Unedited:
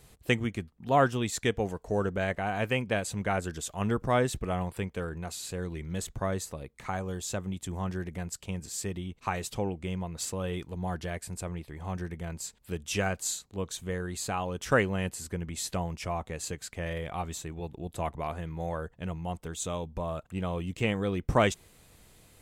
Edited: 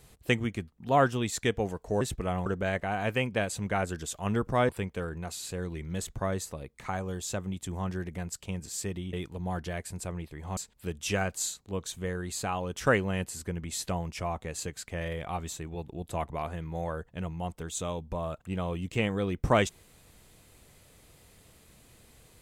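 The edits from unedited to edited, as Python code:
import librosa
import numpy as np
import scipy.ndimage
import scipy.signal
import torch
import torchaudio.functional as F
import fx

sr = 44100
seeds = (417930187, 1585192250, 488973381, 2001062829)

y = fx.edit(x, sr, fx.move(start_s=4.24, length_s=0.45, to_s=2.01),
    fx.cut(start_s=9.13, length_s=1.37),
    fx.cut(start_s=11.94, length_s=0.48), tone=tone)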